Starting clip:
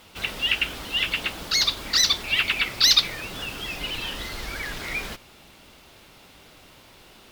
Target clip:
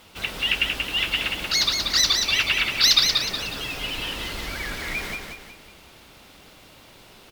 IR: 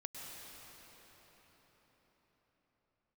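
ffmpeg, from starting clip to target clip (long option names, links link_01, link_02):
-af "aecho=1:1:183|366|549|732|915:0.596|0.25|0.105|0.0441|0.0185"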